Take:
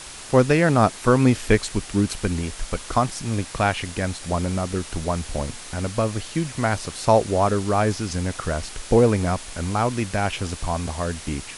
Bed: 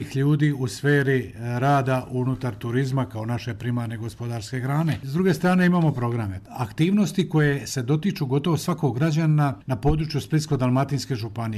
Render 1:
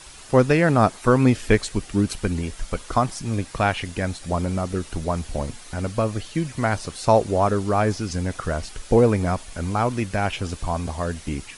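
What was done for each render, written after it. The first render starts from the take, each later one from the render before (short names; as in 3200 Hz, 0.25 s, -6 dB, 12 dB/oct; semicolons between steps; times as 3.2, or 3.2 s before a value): denoiser 8 dB, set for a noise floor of -39 dBFS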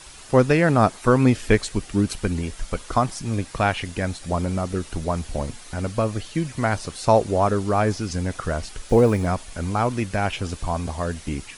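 8.87–9.28 block floating point 7-bit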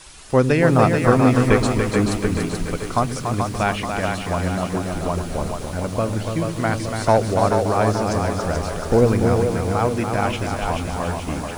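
split-band echo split 340 Hz, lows 0.101 s, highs 0.433 s, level -5 dB; lo-fi delay 0.287 s, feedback 35%, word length 7-bit, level -6 dB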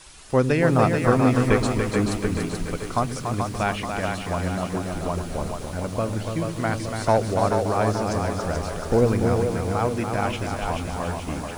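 gain -3.5 dB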